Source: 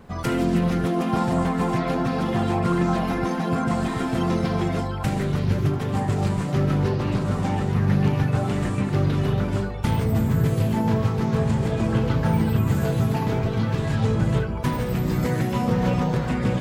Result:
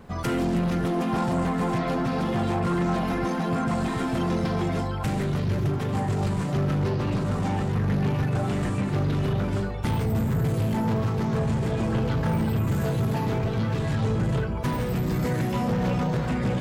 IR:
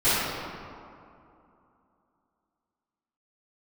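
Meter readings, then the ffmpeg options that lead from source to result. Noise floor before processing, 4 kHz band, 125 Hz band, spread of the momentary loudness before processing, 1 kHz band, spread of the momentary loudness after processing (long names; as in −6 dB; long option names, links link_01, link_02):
−27 dBFS, −2.5 dB, −3.0 dB, 3 LU, −2.5 dB, 2 LU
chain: -af "asoftclip=type=tanh:threshold=-19dB"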